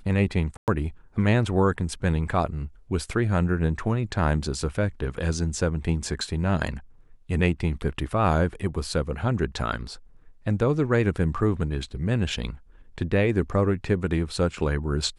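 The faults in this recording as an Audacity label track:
0.570000	0.680000	drop-out 108 ms

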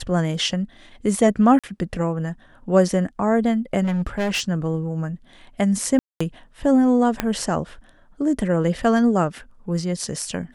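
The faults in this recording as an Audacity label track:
1.590000	1.640000	drop-out 46 ms
3.830000	4.420000	clipping −19 dBFS
5.990000	6.210000	drop-out 215 ms
7.200000	7.200000	click −6 dBFS

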